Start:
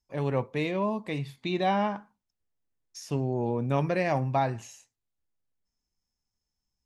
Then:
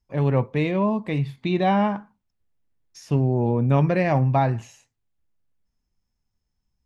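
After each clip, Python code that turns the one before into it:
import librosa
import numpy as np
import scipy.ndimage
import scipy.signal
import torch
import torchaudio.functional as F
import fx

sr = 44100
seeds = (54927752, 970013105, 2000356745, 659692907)

y = fx.bass_treble(x, sr, bass_db=6, treble_db=-8)
y = F.gain(torch.from_numpy(y), 4.5).numpy()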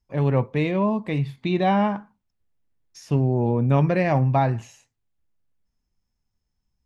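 y = x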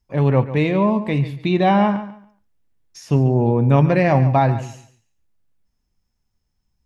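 y = fx.echo_feedback(x, sr, ms=141, feedback_pct=22, wet_db=-13.5)
y = F.gain(torch.from_numpy(y), 4.5).numpy()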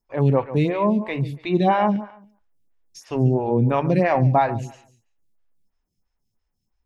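y = fx.stagger_phaser(x, sr, hz=3.0)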